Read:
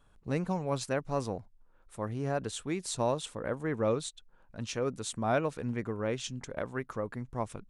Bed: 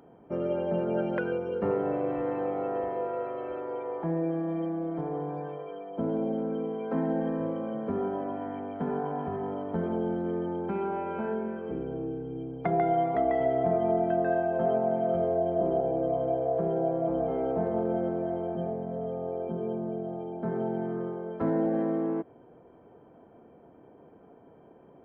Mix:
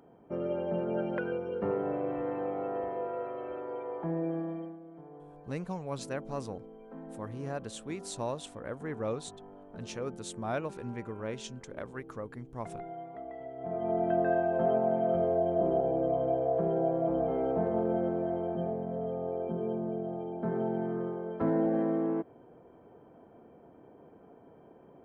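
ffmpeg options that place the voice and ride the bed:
ffmpeg -i stem1.wav -i stem2.wav -filter_complex "[0:a]adelay=5200,volume=-5dB[link_01];[1:a]volume=12.5dB,afade=type=out:start_time=4.39:duration=0.4:silence=0.211349,afade=type=in:start_time=13.57:duration=0.58:silence=0.158489[link_02];[link_01][link_02]amix=inputs=2:normalize=0" out.wav

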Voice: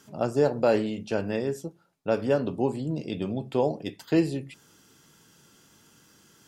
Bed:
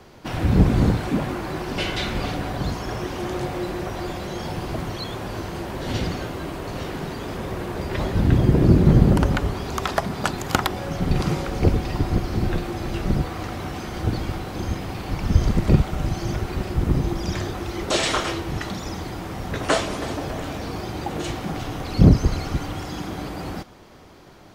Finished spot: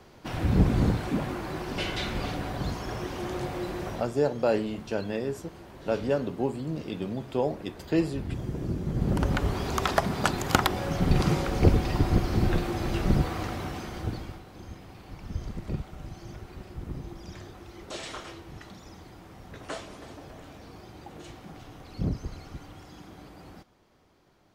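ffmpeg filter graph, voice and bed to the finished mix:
ffmpeg -i stem1.wav -i stem2.wav -filter_complex "[0:a]adelay=3800,volume=-2.5dB[link_01];[1:a]volume=9.5dB,afade=type=out:start_time=3.9:duration=0.22:silence=0.281838,afade=type=in:start_time=8.93:duration=0.68:silence=0.177828,afade=type=out:start_time=13.33:duration=1.1:silence=0.177828[link_02];[link_01][link_02]amix=inputs=2:normalize=0" out.wav

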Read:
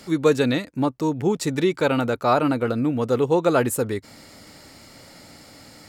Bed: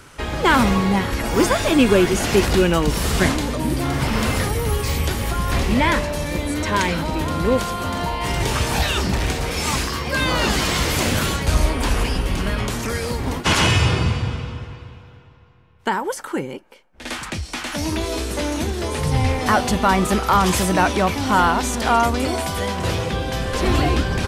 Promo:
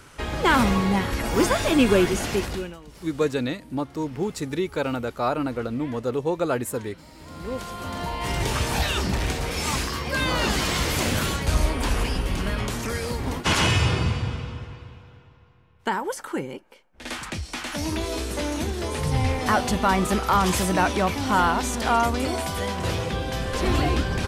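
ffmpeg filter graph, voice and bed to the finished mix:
ffmpeg -i stem1.wav -i stem2.wav -filter_complex "[0:a]adelay=2950,volume=-5.5dB[link_01];[1:a]volume=18.5dB,afade=type=out:start_time=2.01:duration=0.76:silence=0.0749894,afade=type=in:start_time=7.17:duration=1.16:silence=0.0794328[link_02];[link_01][link_02]amix=inputs=2:normalize=0" out.wav

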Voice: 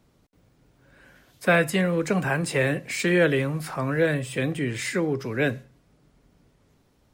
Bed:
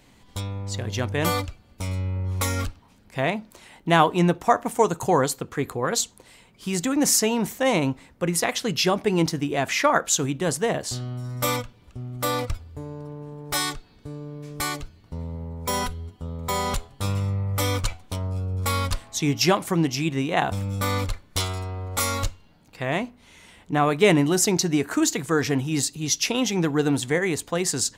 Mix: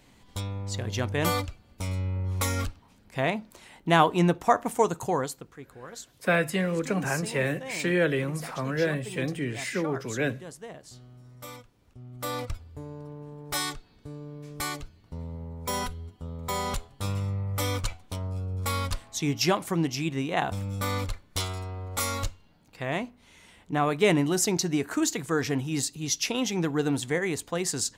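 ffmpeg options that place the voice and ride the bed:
ffmpeg -i stem1.wav -i stem2.wav -filter_complex "[0:a]adelay=4800,volume=-4dB[link_01];[1:a]volume=11.5dB,afade=type=out:start_time=4.72:duration=0.87:silence=0.158489,afade=type=in:start_time=11.68:duration=0.97:silence=0.199526[link_02];[link_01][link_02]amix=inputs=2:normalize=0" out.wav

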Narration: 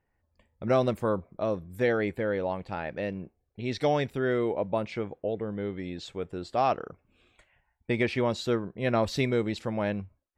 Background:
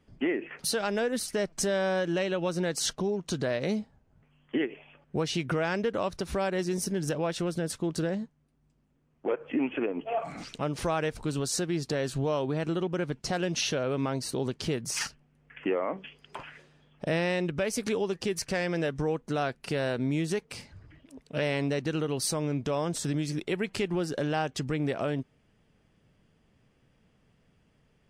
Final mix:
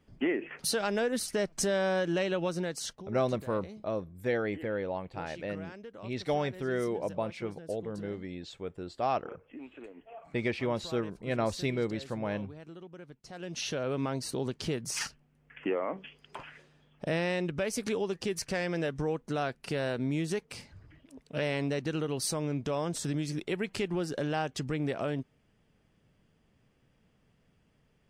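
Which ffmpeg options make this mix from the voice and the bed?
ffmpeg -i stem1.wav -i stem2.wav -filter_complex "[0:a]adelay=2450,volume=-4.5dB[link_01];[1:a]volume=14dB,afade=type=out:start_time=2.39:duration=0.68:silence=0.149624,afade=type=in:start_time=13.3:duration=0.58:silence=0.177828[link_02];[link_01][link_02]amix=inputs=2:normalize=0" out.wav

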